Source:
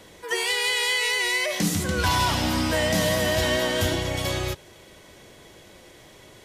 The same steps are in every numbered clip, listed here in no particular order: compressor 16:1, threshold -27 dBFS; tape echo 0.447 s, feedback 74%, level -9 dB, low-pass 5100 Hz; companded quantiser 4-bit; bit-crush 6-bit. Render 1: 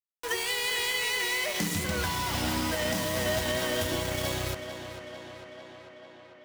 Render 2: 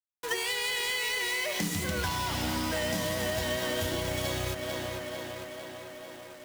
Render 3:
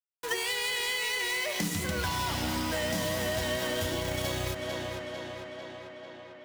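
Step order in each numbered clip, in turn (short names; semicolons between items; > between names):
companded quantiser > compressor > bit-crush > tape echo; bit-crush > tape echo > companded quantiser > compressor; bit-crush > companded quantiser > tape echo > compressor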